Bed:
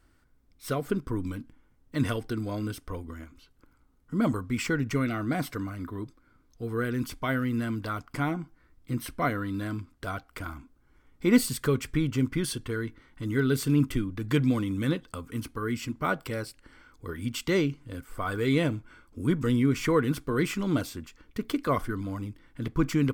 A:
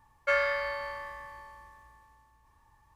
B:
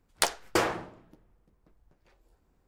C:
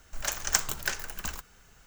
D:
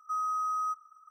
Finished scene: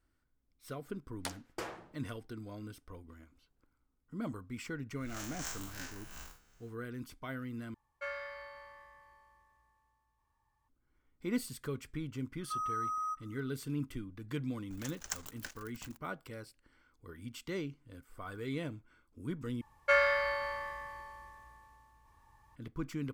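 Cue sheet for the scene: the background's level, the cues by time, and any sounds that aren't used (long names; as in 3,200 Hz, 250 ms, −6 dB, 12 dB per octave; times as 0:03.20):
bed −13.5 dB
0:01.03: mix in B −15.5 dB
0:04.92: mix in C −9 dB, fades 0.10 s + spectrum smeared in time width 100 ms
0:07.74: overwrite with A −14.5 dB
0:12.41: mix in D −5 dB
0:14.57: mix in C −13.5 dB + dead-zone distortion −38.5 dBFS
0:19.61: overwrite with A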